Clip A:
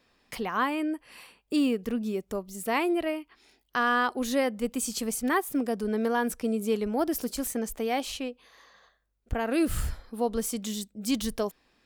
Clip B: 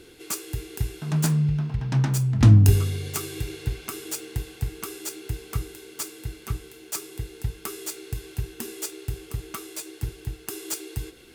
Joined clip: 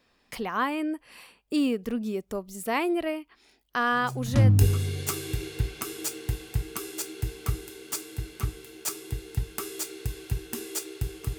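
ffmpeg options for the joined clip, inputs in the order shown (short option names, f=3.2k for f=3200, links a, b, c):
-filter_complex "[0:a]apad=whole_dur=11.38,atrim=end=11.38,atrim=end=4.95,asetpts=PTS-STARTPTS[a];[1:a]atrim=start=1.98:end=9.45,asetpts=PTS-STARTPTS[b];[a][b]acrossfade=d=1.04:c1=tri:c2=tri"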